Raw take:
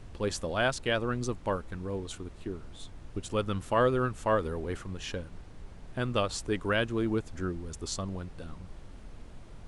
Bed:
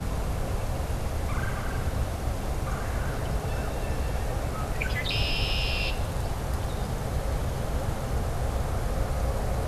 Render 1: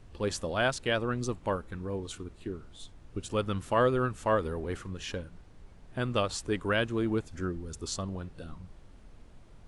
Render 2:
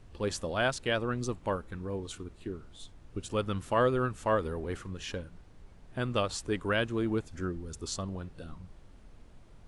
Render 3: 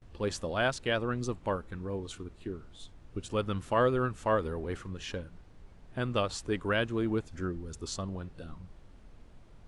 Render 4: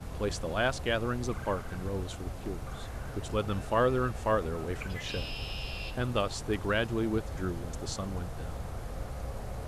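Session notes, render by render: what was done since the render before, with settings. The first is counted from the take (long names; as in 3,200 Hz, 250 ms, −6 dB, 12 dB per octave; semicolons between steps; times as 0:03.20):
noise reduction from a noise print 6 dB
level −1 dB
noise gate with hold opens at −46 dBFS; high-shelf EQ 9,400 Hz −7.5 dB
mix in bed −10.5 dB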